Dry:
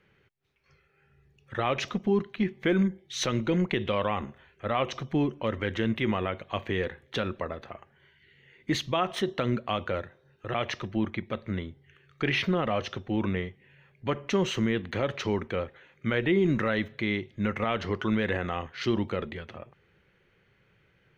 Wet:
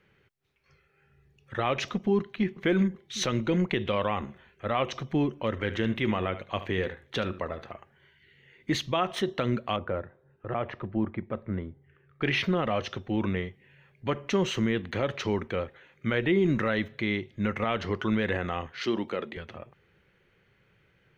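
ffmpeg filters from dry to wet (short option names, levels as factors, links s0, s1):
-filter_complex "[0:a]asplit=2[s0][s1];[s1]afade=t=in:st=2.18:d=0.01,afade=t=out:st=2.62:d=0.01,aecho=0:1:380|760|1140|1520|1900|2280|2660:0.237137|0.142282|0.0853695|0.0512217|0.030733|0.0184398|0.0110639[s2];[s0][s2]amix=inputs=2:normalize=0,asplit=3[s3][s4][s5];[s3]afade=t=out:st=5.56:d=0.02[s6];[s4]aecho=1:1:74:0.211,afade=t=in:st=5.56:d=0.02,afade=t=out:st=7.7:d=0.02[s7];[s5]afade=t=in:st=7.7:d=0.02[s8];[s6][s7][s8]amix=inputs=3:normalize=0,asettb=1/sr,asplit=3[s9][s10][s11];[s9]atrim=end=9.764[s12];[s10]atrim=start=9.76:end=12.22,asetpts=PTS-STARTPTS,afade=t=in:d=0.004:c=qsin,afade=t=out:st=2.456:d=0.004:c=qsin,lowpass=1400[s13];[s11]atrim=start=12.216[s14];[s12][s13]acrossfade=d=0.004:c1=hsin:c2=qsin[s15];[s15][s14]acrossfade=d=0.004:c1=qsin:c2=hsin,asettb=1/sr,asplit=3[s16][s17][s18];[s16]atrim=end=18.794[s19];[s17]atrim=start=18.79:end=19.37,asetpts=PTS-STARTPTS,afade=t=in:d=0.004:c=qsin,afade=t=out:st=0.576:d=0.004:c=qsin,highpass=230[s20];[s18]atrim=start=19.366[s21];[s19][s20]acrossfade=d=0.004:c1=hsin:c2=qsin[s22];[s22][s21]acrossfade=d=0.004:c1=qsin:c2=hsin"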